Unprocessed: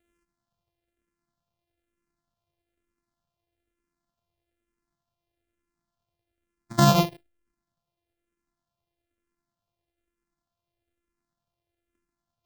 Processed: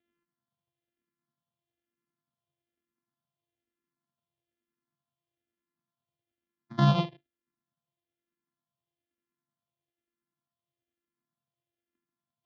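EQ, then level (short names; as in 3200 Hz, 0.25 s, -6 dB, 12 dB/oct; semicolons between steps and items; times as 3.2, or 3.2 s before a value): air absorption 110 m; speaker cabinet 120–5200 Hz, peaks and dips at 140 Hz +9 dB, 240 Hz +8 dB, 1100 Hz +3 dB, 1800 Hz +3 dB, 3300 Hz +8 dB; -8.5 dB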